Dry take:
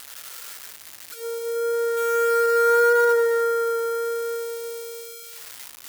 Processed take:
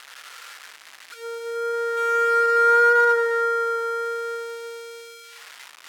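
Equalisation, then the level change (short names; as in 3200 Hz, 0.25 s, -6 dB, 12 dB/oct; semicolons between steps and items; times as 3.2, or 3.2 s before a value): band-pass 1600 Hz, Q 0.7; +4.5 dB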